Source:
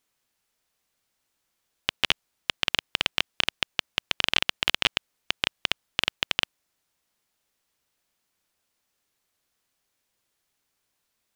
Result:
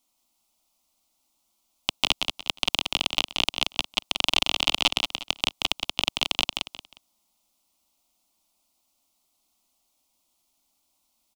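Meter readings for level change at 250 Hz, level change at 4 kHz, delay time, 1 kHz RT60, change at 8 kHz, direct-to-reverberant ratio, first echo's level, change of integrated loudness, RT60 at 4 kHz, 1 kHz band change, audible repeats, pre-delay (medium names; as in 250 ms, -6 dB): +5.0 dB, +3.0 dB, 179 ms, no reverb, +5.5 dB, no reverb, -5.0 dB, +2.0 dB, no reverb, +4.0 dB, 3, no reverb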